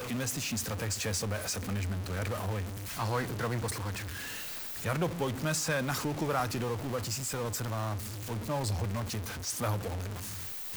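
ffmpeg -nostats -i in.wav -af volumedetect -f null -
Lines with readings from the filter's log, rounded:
mean_volume: -33.7 dB
max_volume: -18.5 dB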